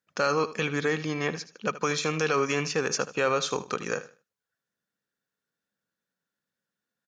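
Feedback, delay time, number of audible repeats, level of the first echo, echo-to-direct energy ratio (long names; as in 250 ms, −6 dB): 25%, 77 ms, 2, −15.0 dB, −14.5 dB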